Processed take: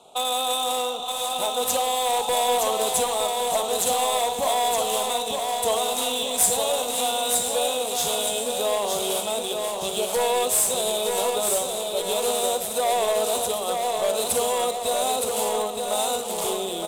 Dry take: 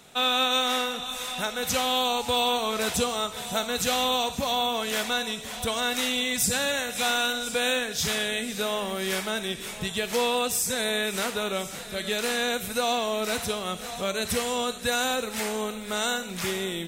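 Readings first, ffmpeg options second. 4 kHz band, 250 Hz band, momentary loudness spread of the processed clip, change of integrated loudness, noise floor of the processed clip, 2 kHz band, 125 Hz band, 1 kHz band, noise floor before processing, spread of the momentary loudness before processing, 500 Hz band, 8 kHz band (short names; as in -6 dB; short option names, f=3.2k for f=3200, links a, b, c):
0.0 dB, -5.0 dB, 5 LU, +3.0 dB, -30 dBFS, -6.5 dB, -6.5 dB, +5.0 dB, -37 dBFS, 6 LU, +5.5 dB, +6.5 dB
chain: -filter_complex "[0:a]acontrast=85,acrossover=split=460 5100:gain=0.112 1 0.2[a][b][c];[a][b][c]amix=inputs=3:normalize=0,bandreject=f=46.72:t=h:w=4,bandreject=f=93.44:t=h:w=4,bandreject=f=140.16:t=h:w=4,bandreject=f=186.88:t=h:w=4,bandreject=f=233.6:t=h:w=4,bandreject=f=280.32:t=h:w=4,bandreject=f=327.04:t=h:w=4,bandreject=f=373.76:t=h:w=4,bandreject=f=420.48:t=h:w=4,bandreject=f=467.2:t=h:w=4,bandreject=f=513.92:t=h:w=4,bandreject=f=560.64:t=h:w=4,alimiter=limit=-12.5dB:level=0:latency=1,asuperstop=centerf=1800:order=4:qfactor=0.74,highshelf=f=3.4k:g=-8,volume=22.5dB,asoftclip=hard,volume=-22.5dB,aecho=1:1:917|1834|2751|3668|4585|5502:0.596|0.292|0.143|0.0701|0.0343|0.0168,aexciter=amount=8.6:drive=9.2:freq=7.8k,adynamicsmooth=sensitivity=7:basefreq=4.3k,volume=3dB"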